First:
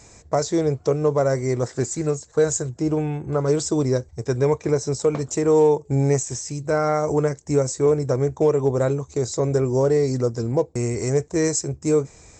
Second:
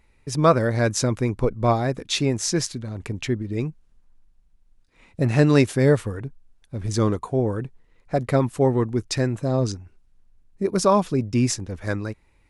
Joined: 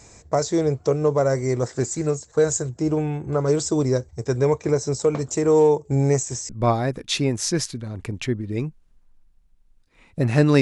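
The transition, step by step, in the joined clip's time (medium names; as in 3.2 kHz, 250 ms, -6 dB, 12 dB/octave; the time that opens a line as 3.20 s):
first
6.49 s: go over to second from 1.50 s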